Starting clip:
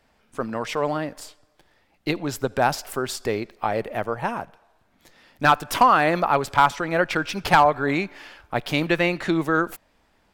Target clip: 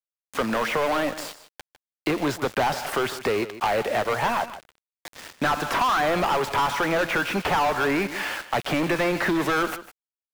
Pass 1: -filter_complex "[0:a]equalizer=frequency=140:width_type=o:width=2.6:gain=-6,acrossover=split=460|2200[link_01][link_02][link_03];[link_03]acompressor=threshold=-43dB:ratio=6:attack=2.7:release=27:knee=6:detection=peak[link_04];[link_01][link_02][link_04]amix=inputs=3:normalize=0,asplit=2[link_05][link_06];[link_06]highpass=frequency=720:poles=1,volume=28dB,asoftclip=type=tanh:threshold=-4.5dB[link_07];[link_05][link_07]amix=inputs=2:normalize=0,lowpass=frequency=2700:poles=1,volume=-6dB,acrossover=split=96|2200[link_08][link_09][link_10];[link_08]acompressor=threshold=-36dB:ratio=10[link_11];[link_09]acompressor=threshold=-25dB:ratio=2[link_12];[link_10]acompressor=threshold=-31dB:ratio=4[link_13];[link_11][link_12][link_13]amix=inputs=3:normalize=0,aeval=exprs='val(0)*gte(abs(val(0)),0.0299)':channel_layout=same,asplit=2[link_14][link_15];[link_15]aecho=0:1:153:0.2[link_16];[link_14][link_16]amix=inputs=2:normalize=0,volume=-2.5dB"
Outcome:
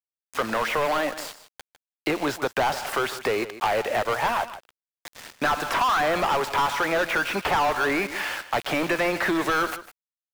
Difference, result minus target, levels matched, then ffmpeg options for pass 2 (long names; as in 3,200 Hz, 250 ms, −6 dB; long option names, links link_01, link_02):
125 Hz band −4.5 dB
-filter_complex "[0:a]equalizer=frequency=140:width_type=o:width=2.6:gain=2.5,acrossover=split=460|2200[link_01][link_02][link_03];[link_03]acompressor=threshold=-43dB:ratio=6:attack=2.7:release=27:knee=6:detection=peak[link_04];[link_01][link_02][link_04]amix=inputs=3:normalize=0,asplit=2[link_05][link_06];[link_06]highpass=frequency=720:poles=1,volume=28dB,asoftclip=type=tanh:threshold=-4.5dB[link_07];[link_05][link_07]amix=inputs=2:normalize=0,lowpass=frequency=2700:poles=1,volume=-6dB,acrossover=split=96|2200[link_08][link_09][link_10];[link_08]acompressor=threshold=-36dB:ratio=10[link_11];[link_09]acompressor=threshold=-25dB:ratio=2[link_12];[link_10]acompressor=threshold=-31dB:ratio=4[link_13];[link_11][link_12][link_13]amix=inputs=3:normalize=0,aeval=exprs='val(0)*gte(abs(val(0)),0.0299)':channel_layout=same,asplit=2[link_14][link_15];[link_15]aecho=0:1:153:0.2[link_16];[link_14][link_16]amix=inputs=2:normalize=0,volume=-2.5dB"